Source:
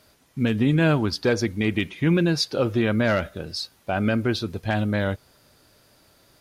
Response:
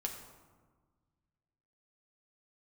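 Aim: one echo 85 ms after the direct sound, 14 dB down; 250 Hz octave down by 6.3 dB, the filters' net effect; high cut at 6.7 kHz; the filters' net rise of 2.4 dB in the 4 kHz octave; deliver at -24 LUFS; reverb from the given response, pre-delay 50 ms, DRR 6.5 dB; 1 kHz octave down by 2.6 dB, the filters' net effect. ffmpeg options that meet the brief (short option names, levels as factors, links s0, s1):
-filter_complex "[0:a]lowpass=6700,equalizer=f=250:t=o:g=-9,equalizer=f=1000:t=o:g=-3.5,equalizer=f=4000:t=o:g=4,aecho=1:1:85:0.2,asplit=2[s0][s1];[1:a]atrim=start_sample=2205,adelay=50[s2];[s1][s2]afir=irnorm=-1:irlink=0,volume=0.447[s3];[s0][s3]amix=inputs=2:normalize=0,volume=1.12"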